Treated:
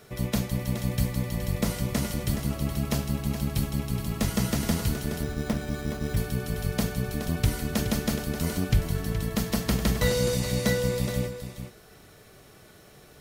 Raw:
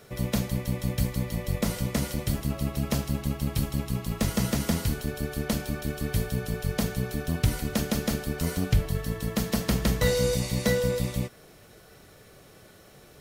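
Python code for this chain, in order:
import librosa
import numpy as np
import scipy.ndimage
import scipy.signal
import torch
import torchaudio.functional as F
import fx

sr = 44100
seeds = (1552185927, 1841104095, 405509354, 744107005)

y = fx.notch(x, sr, hz=530.0, q=12.0)
y = y + 10.0 ** (-9.5 / 20.0) * np.pad(y, (int(421 * sr / 1000.0), 0))[:len(y)]
y = fx.resample_bad(y, sr, factor=8, down='filtered', up='hold', at=(5.23, 6.17))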